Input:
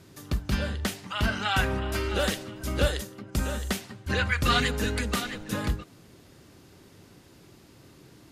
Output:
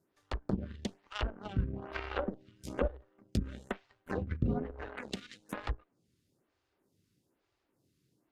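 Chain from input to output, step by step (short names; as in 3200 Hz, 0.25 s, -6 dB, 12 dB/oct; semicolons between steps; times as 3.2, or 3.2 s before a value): added harmonics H 4 -22 dB, 5 -36 dB, 7 -17 dB, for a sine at -10.5 dBFS; treble ducked by the level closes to 440 Hz, closed at -24 dBFS; 4.82–5.52 tilt +2.5 dB/oct; photocell phaser 1.1 Hz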